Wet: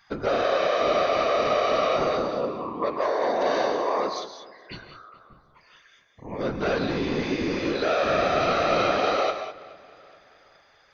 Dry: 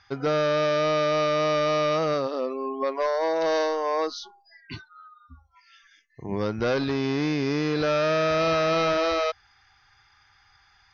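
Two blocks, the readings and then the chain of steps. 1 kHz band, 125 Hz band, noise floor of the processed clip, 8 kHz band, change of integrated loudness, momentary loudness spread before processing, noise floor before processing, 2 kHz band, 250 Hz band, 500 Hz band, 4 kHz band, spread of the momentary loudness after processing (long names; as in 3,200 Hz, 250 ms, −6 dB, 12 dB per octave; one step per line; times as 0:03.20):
+2.5 dB, −4.5 dB, −59 dBFS, can't be measured, 0.0 dB, 9 LU, −61 dBFS, +1.0 dB, −1.5 dB, 0.0 dB, 0.0 dB, 15 LU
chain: notch filter 5,300 Hz, Q 6.4
noise gate with hold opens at −56 dBFS
low-shelf EQ 82 Hz −9 dB
mains-hum notches 50/100/150/200/250/300/350/400 Hz
random phases in short frames
on a send: delay with a low-pass on its return 425 ms, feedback 43%, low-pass 3,600 Hz, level −21.5 dB
on the sum: reverb whose tail is shaped and stops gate 220 ms rising, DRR 7.5 dB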